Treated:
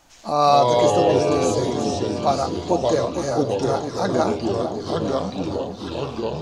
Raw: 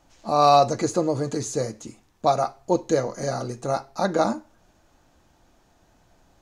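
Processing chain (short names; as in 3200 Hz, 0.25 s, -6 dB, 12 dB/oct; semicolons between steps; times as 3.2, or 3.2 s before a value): echoes that change speed 0.152 s, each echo -3 st, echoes 3; echo with dull and thin repeats by turns 0.456 s, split 870 Hz, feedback 65%, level -7 dB; mismatched tape noise reduction encoder only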